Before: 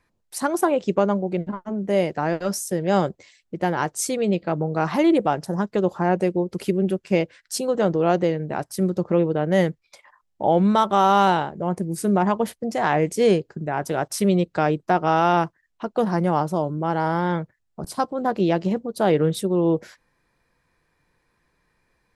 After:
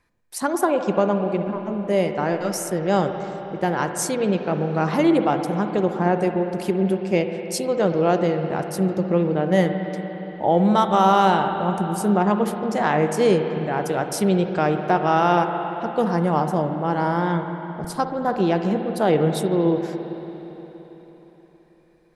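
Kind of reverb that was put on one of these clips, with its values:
spring reverb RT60 4 s, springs 53/57 ms, chirp 30 ms, DRR 6 dB

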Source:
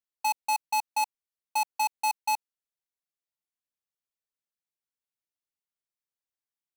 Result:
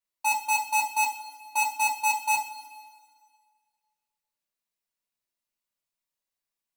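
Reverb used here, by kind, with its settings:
coupled-rooms reverb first 0.29 s, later 1.8 s, from −18 dB, DRR −7 dB
level −3 dB

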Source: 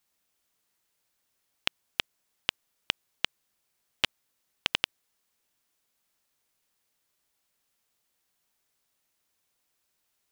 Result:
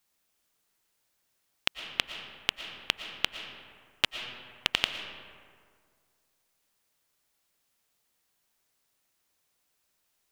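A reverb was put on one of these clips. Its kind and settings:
comb and all-pass reverb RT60 2 s, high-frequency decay 0.5×, pre-delay 75 ms, DRR 7.5 dB
level +1 dB

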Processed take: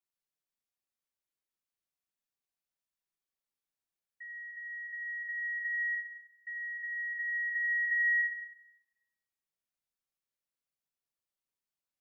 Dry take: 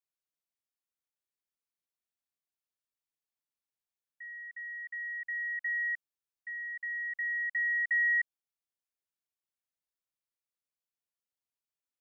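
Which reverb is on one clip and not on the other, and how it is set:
rectangular room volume 610 cubic metres, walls mixed, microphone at 1.1 metres
level −3 dB

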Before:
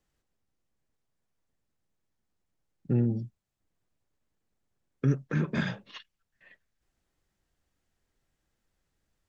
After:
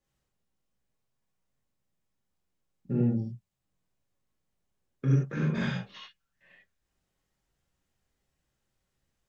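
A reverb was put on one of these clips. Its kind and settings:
reverb whose tail is shaped and stops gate 120 ms flat, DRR −5 dB
level −6.5 dB

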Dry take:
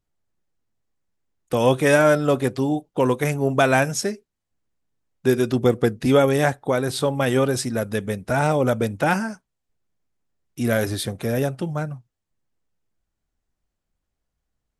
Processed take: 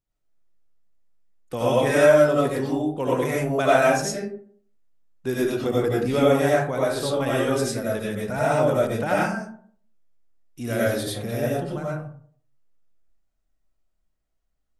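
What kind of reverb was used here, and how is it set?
comb and all-pass reverb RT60 0.54 s, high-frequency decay 0.45×, pre-delay 50 ms, DRR −6.5 dB
level −8.5 dB

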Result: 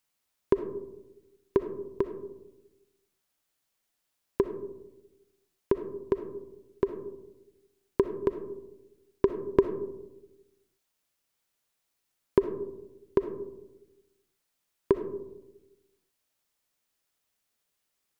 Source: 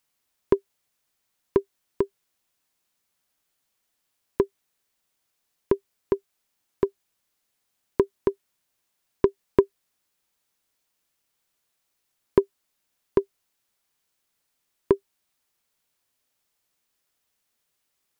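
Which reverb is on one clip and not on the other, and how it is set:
comb and all-pass reverb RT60 1 s, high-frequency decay 0.25×, pre-delay 20 ms, DRR 8.5 dB
level −3.5 dB

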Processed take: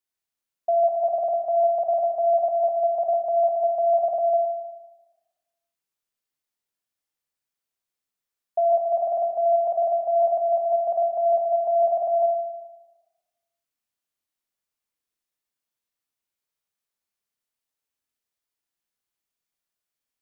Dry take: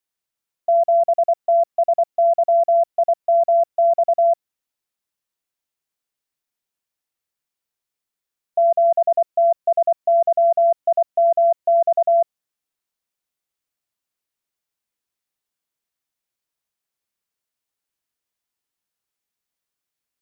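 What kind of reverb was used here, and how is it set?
four-comb reverb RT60 1.2 s, combs from 26 ms, DRR 1.5 dB
level −5 dB

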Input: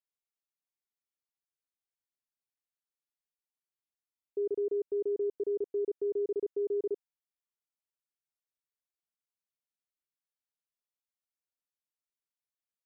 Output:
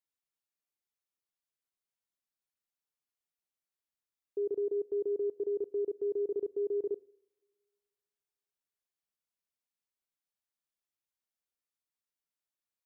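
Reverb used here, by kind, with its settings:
coupled-rooms reverb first 0.74 s, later 2.3 s, from −23 dB, DRR 19 dB
level −1 dB

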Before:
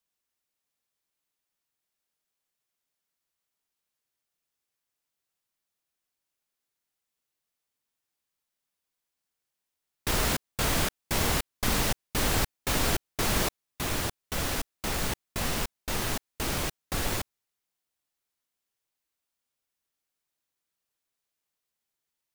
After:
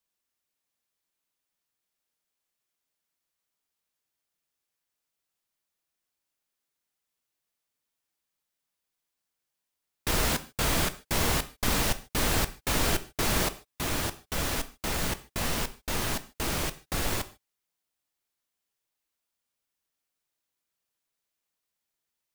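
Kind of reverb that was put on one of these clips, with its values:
reverb whose tail is shaped and stops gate 170 ms falling, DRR 11 dB

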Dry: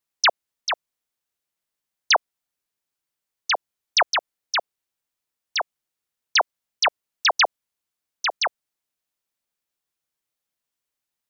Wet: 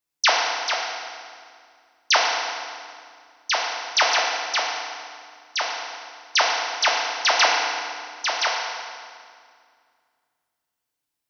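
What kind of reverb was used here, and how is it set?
feedback delay network reverb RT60 2.1 s, low-frequency decay 1.55×, high-frequency decay 0.85×, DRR −3 dB
level −2.5 dB

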